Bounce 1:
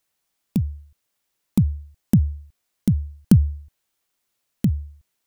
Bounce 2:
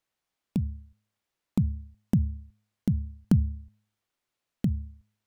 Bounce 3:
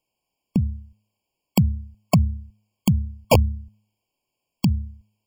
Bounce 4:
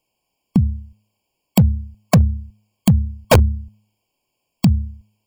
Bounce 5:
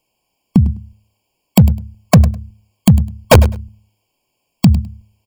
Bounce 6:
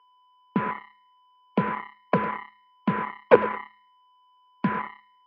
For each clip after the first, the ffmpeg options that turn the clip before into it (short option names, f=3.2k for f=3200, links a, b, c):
-filter_complex "[0:a]lowpass=f=3.3k:p=1,bandreject=f=105.5:t=h:w=4,bandreject=f=211:t=h:w=4,asplit=2[a][b];[b]acompressor=threshold=-22dB:ratio=6,volume=-2dB[c];[a][c]amix=inputs=2:normalize=0,volume=-9dB"
-af "aeval=exprs='(mod(5.31*val(0)+1,2)-1)/5.31':c=same,afftfilt=real='re*eq(mod(floor(b*sr/1024/1100),2),0)':imag='im*eq(mod(floor(b*sr/1024/1100),2),0)':win_size=1024:overlap=0.75,volume=7dB"
-af "asoftclip=type=hard:threshold=-12dB,volume=6dB"
-af "aecho=1:1:103|206:0.168|0.0269,volume=4.5dB"
-af "aeval=exprs='val(0)+0.1*sin(2*PI*1000*n/s)':c=same,acrusher=bits=2:mix=0:aa=0.5,highpass=f=230:w=0.5412,highpass=f=230:w=1.3066,equalizer=f=270:t=q:w=4:g=-5,equalizer=f=450:t=q:w=4:g=9,equalizer=f=690:t=q:w=4:g=-9,equalizer=f=1.5k:t=q:w=4:g=3,lowpass=f=2.2k:w=0.5412,lowpass=f=2.2k:w=1.3066,volume=-7.5dB"